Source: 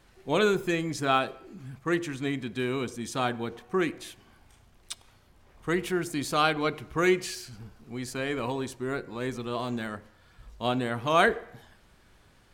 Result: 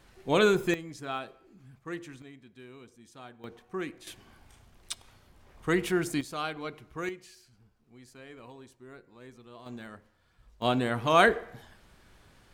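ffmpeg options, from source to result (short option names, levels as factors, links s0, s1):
-af "asetnsamples=n=441:p=0,asendcmd='0.74 volume volume -11dB;2.22 volume volume -19.5dB;3.44 volume volume -8.5dB;4.07 volume volume 1dB;6.21 volume volume -10dB;7.09 volume volume -17.5dB;9.66 volume volume -10dB;10.62 volume volume 1dB',volume=1.12"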